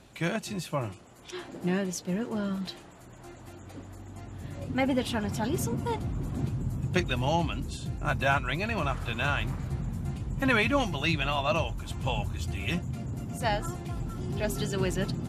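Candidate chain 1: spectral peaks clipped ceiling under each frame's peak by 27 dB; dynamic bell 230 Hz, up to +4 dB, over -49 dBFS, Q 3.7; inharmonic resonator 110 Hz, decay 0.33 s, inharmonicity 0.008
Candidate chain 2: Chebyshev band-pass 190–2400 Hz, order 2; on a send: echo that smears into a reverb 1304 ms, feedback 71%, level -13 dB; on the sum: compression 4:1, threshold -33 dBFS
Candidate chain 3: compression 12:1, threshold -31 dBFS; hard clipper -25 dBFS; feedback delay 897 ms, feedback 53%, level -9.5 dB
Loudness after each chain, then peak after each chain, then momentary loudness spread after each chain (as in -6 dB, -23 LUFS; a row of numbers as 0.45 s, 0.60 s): -39.0 LUFS, -38.0 LUFS, -36.5 LUFS; -21.0 dBFS, -18.0 dBFS, -22.0 dBFS; 16 LU, 8 LU, 7 LU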